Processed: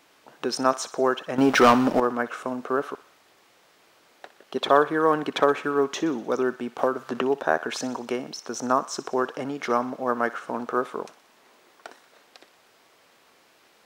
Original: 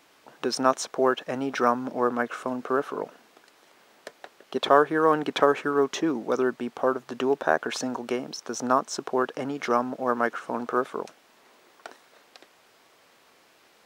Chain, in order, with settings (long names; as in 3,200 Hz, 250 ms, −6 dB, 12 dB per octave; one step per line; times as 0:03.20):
0:01.38–0:02.00: leveller curve on the samples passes 3
0:02.95–0:04.11: fill with room tone
feedback echo with a high-pass in the loop 61 ms, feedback 64%, high-pass 890 Hz, level −15 dB
0:06.78–0:07.22: multiband upward and downward compressor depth 100%